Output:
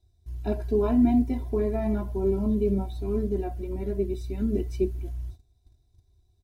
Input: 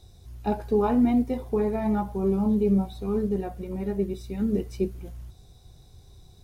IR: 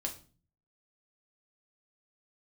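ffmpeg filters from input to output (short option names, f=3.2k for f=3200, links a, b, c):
-af "agate=range=-18dB:threshold=-45dB:ratio=16:detection=peak,equalizer=f=84:w=0.48:g=9,bandreject=f=1.2k:w=5.5,aecho=1:1:3:0.89,volume=-5dB"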